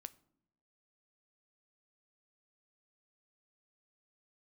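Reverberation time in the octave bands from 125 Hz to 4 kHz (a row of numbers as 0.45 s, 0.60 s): 0.95 s, 1.0 s, 0.95 s, 0.75 s, 0.50 s, 0.40 s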